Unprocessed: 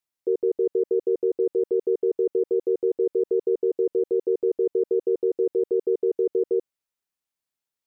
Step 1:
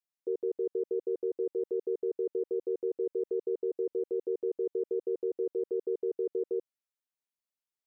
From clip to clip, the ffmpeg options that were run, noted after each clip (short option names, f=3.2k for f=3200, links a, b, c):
-af "lowshelf=f=140:g=-6,volume=-8.5dB"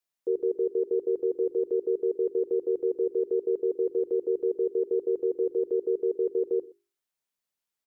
-af "bandreject=f=50:t=h:w=6,bandreject=f=100:t=h:w=6,bandreject=f=150:t=h:w=6,bandreject=f=200:t=h:w=6,bandreject=f=250:t=h:w=6,bandreject=f=300:t=h:w=6,bandreject=f=350:t=h:w=6,bandreject=f=400:t=h:w=6,aecho=1:1:122:0.075,volume=5.5dB"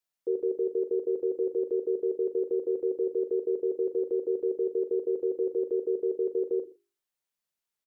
-filter_complex "[0:a]asplit=2[a][b];[b]adelay=40,volume=-10dB[c];[a][c]amix=inputs=2:normalize=0,volume=-1.5dB"